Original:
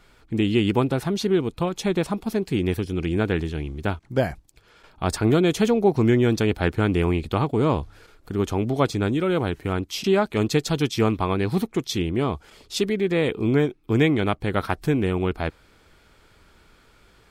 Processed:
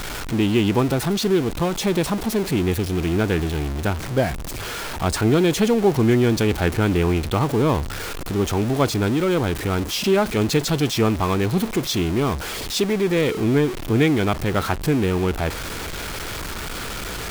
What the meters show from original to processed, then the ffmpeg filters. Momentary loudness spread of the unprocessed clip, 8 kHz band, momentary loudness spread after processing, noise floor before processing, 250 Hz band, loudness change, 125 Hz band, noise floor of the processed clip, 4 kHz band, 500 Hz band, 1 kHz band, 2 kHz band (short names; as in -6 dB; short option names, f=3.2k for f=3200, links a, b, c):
8 LU, +8.0 dB, 11 LU, -57 dBFS, +2.0 dB, +2.0 dB, +2.5 dB, -30 dBFS, +5.0 dB, +2.0 dB, +3.0 dB, +3.5 dB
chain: -af "aeval=exprs='val(0)+0.5*0.0631*sgn(val(0))':c=same"